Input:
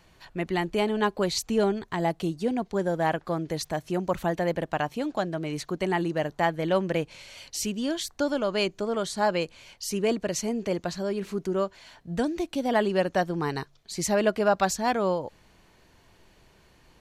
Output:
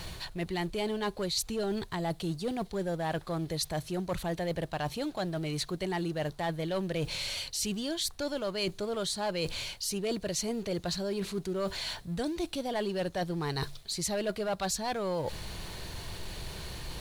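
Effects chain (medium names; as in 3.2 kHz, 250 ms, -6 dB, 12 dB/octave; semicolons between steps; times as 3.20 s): companding laws mixed up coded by mu; in parallel at -8 dB: wavefolder -19.5 dBFS; on the sum: bass shelf 280 Hz +7.5 dB; bit crusher 10-bit; fifteen-band graphic EQ 250 Hz -7 dB, 4 kHz +9 dB, 10 kHz +8 dB; reverse; compression 4:1, threshold -36 dBFS, peak gain reduction 17.5 dB; reverse; trim +3 dB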